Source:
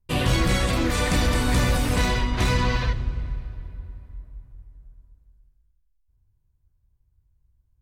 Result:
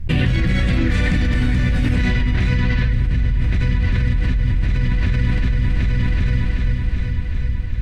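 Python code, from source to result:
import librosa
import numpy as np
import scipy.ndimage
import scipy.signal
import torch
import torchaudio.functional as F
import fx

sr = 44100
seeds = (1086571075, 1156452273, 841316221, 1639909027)

p1 = fx.curve_eq(x, sr, hz=(170.0, 250.0, 380.0, 1100.0, 1800.0, 14000.0), db=(0, -3, -9, -17, -2, -27))
p2 = p1 + fx.echo_heads(p1, sr, ms=380, heads='first and third', feedback_pct=46, wet_db=-18, dry=0)
p3 = fx.env_flatten(p2, sr, amount_pct=100)
y = p3 * librosa.db_to_amplitude(2.0)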